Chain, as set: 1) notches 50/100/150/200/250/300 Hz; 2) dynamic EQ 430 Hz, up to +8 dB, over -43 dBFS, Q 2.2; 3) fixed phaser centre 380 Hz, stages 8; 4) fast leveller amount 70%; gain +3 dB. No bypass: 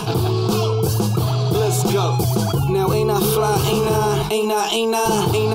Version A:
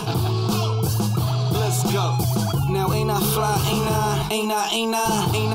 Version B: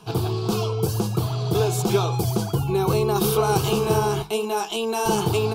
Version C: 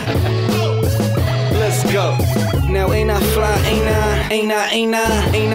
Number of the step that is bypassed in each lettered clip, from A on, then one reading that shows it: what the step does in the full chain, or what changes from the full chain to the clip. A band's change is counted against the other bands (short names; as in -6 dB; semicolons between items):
2, 500 Hz band -5.5 dB; 4, crest factor change +2.5 dB; 3, 2 kHz band +7.0 dB